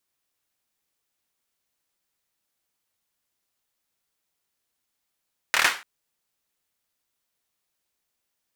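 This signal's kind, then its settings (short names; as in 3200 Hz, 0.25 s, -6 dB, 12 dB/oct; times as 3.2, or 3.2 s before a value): hand clap length 0.29 s, bursts 5, apart 26 ms, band 1600 Hz, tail 0.32 s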